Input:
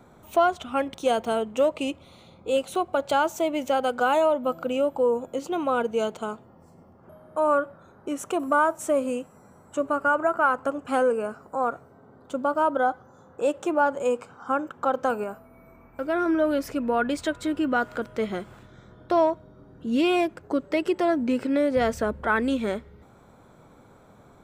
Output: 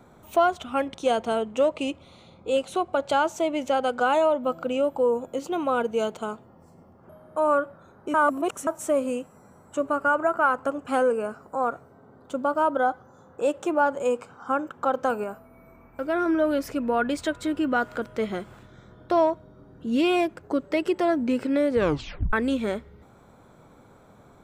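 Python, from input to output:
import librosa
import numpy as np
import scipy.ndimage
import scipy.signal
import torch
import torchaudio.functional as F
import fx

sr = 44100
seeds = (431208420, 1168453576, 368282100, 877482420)

y = fx.lowpass(x, sr, hz=9300.0, slope=12, at=(0.86, 4.84))
y = fx.edit(y, sr, fx.reverse_span(start_s=8.14, length_s=0.53),
    fx.tape_stop(start_s=21.72, length_s=0.61), tone=tone)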